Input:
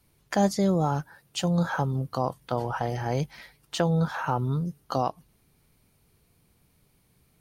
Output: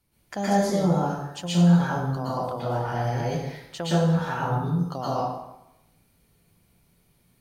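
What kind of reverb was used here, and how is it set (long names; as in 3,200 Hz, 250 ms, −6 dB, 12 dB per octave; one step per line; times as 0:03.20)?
dense smooth reverb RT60 0.88 s, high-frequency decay 0.8×, pre-delay 105 ms, DRR −8.5 dB
level −7.5 dB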